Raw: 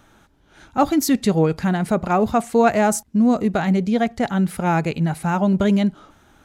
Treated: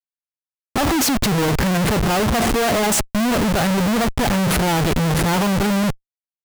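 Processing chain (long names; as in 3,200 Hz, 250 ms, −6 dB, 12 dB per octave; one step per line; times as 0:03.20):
comparator with hysteresis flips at −34.5 dBFS
level +2 dB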